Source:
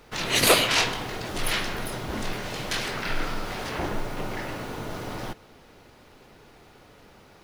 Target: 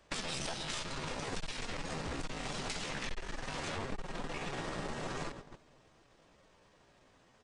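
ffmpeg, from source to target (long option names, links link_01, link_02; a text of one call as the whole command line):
ffmpeg -i in.wav -filter_complex "[0:a]asplit=2[link_01][link_02];[link_02]aeval=exprs='sgn(val(0))*max(abs(val(0))-0.0112,0)':channel_layout=same,volume=-7dB[link_03];[link_01][link_03]amix=inputs=2:normalize=0,acrossover=split=180[link_04][link_05];[link_05]acompressor=threshold=-31dB:ratio=2[link_06];[link_04][link_06]amix=inputs=2:normalize=0,asplit=2[link_07][link_08];[link_08]adelay=243,lowpass=frequency=890:poles=1,volume=-14dB,asplit=2[link_09][link_10];[link_10]adelay=243,lowpass=frequency=890:poles=1,volume=0.43,asplit=2[link_11][link_12];[link_12]adelay=243,lowpass=frequency=890:poles=1,volume=0.43,asplit=2[link_13][link_14];[link_14]adelay=243,lowpass=frequency=890:poles=1,volume=0.43[link_15];[link_07][link_09][link_11][link_13][link_15]amix=inputs=5:normalize=0,aresample=16000,aeval=exprs='clip(val(0),-1,0.0178)':channel_layout=same,aresample=44100,agate=range=-14dB:threshold=-42dB:ratio=16:detection=peak,asetrate=57191,aresample=44100,atempo=0.771105,acompressor=threshold=-37dB:ratio=6,volume=1.5dB" out.wav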